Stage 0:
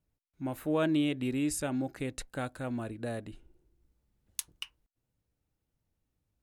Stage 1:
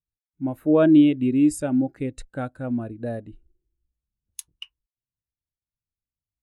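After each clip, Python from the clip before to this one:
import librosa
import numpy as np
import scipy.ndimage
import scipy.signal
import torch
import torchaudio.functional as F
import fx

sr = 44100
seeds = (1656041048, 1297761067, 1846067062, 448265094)

y = fx.spectral_expand(x, sr, expansion=1.5)
y = y * librosa.db_to_amplitude(6.0)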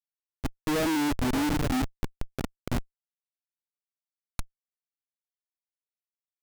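y = fx.echo_diffused(x, sr, ms=537, feedback_pct=52, wet_db=-12.5)
y = fx.spec_erase(y, sr, start_s=1.82, length_s=0.29, low_hz=320.0, high_hz=5000.0)
y = fx.schmitt(y, sr, flips_db=-20.5)
y = y * librosa.db_to_amplitude(-1.5)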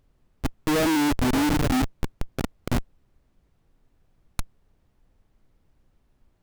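y = fx.dmg_noise_colour(x, sr, seeds[0], colour='brown', level_db=-66.0)
y = y * librosa.db_to_amplitude(4.5)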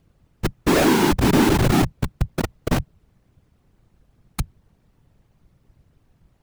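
y = fx.whisperise(x, sr, seeds[1])
y = y * librosa.db_to_amplitude(5.0)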